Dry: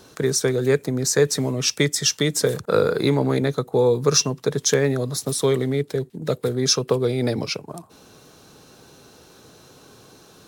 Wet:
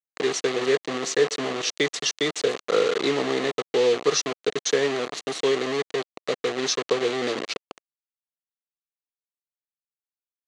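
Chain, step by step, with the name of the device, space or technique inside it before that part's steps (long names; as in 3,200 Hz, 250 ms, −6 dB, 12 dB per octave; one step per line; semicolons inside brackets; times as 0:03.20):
0:00.47–0:01.74: hum removal 55.46 Hz, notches 20
hand-held game console (bit reduction 4 bits; loudspeaker in its box 440–5,500 Hz, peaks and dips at 590 Hz −6 dB, 900 Hz −10 dB, 1,500 Hz −8 dB, 2,400 Hz −5 dB, 3,500 Hz −3 dB, 5,200 Hz −10 dB)
level +2.5 dB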